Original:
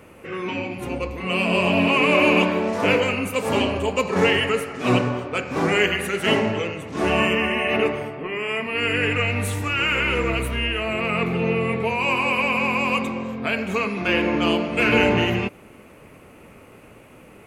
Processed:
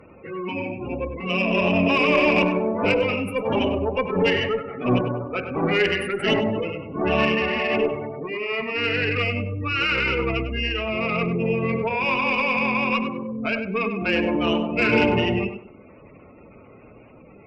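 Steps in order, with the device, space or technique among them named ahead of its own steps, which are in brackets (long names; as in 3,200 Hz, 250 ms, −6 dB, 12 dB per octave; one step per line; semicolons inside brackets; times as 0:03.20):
gate on every frequency bin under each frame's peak −15 dB strong
0:04.31–0:05.71: high-frequency loss of the air 170 metres
rockabilly slapback (tube saturation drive 9 dB, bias 0.5; tape delay 98 ms, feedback 28%, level −7.5 dB, low-pass 2,300 Hz)
level +1.5 dB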